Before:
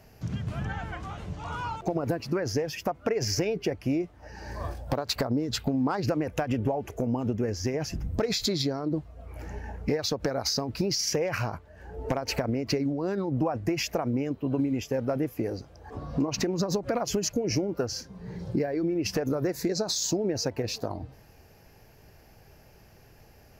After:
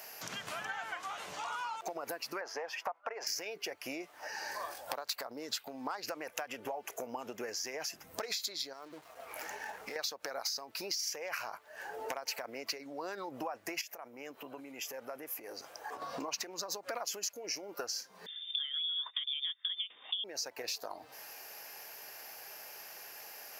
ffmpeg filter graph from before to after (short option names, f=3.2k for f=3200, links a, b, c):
-filter_complex "[0:a]asettb=1/sr,asplit=3[a][b][c];[a]atrim=end=2.414[d];[b]atrim=start=2.41:end=3.27,asetpts=PTS-STARTPTS,afade=t=in:d=0.004:c=qsin,afade=t=out:st=0.856:d=0.004:c=qsin,agate=range=-33dB:threshold=-47dB:ratio=3:release=100:detection=peak,acontrast=81,bandpass=f=920:t=q:w=1.6[e];[c]atrim=start=3.266[f];[d][e]acrossfade=d=0.004:c1=hsin:c2=qsin[g];[g][f]acrossfade=d=0.004:c1=qsin:c2=hsin,asettb=1/sr,asplit=3[h][i][j];[h]atrim=end=8.734[k];[i]atrim=start=8.73:end=9.96,asetpts=PTS-STARTPTS,afade=t=in:d=0.004:c=qsin,afade=t=out:st=1.226:d=0.004:c=qsin,acompressor=threshold=-35dB:ratio=6:attack=3.2:release=140:knee=1:detection=peak,aeval=exprs='sgn(val(0))*max(abs(val(0))-0.0015,0)':c=same[l];[j]atrim=start=9.956[m];[k][l]acrossfade=d=0.004:c1=hsin:c2=qsin[n];[n][m]acrossfade=d=0.004:c1=qsin:c2=hsin,asettb=1/sr,asplit=3[o][p][q];[o]atrim=end=13.814[r];[p]atrim=start=13.81:end=16.02,asetpts=PTS-STARTPTS,afade=t=in:d=0.004:c=qsin,afade=t=out:st=2.206:d=0.004:c=qsin,acompressor=threshold=-39dB:ratio=5:attack=3.2:release=140:knee=1:detection=peak,equalizer=f=4.2k:w=1.7:g=-4[s];[q]atrim=start=16.016[t];[r][s]acrossfade=d=0.004:c1=hsin:c2=qsin[u];[u][t]acrossfade=d=0.004:c1=qsin:c2=hsin,asettb=1/sr,asplit=3[v][w][x];[v]atrim=end=18.264[y];[w]atrim=start=18.26:end=20.24,asetpts=PTS-STARTPTS,afade=t=in:d=0.004:c=qsin,afade=t=out:st=1.976:d=0.004:c=qsin,agate=range=-18dB:threshold=-32dB:ratio=16:release=100:detection=peak,lowpass=f=3.1k:t=q:w=0.5098,lowpass=f=3.1k:t=q:w=0.6013,lowpass=f=3.1k:t=q:w=0.9,lowpass=f=3.1k:t=q:w=2.563,afreqshift=-3700[z];[x]atrim=start=20.236[aa];[y][z]acrossfade=d=0.004:c1=hsin:c2=qsin[ab];[ab][aa]acrossfade=d=0.004:c1=qsin:c2=hsin,highpass=850,highshelf=f=9k:g=10.5,acompressor=threshold=-49dB:ratio=4,volume=10dB"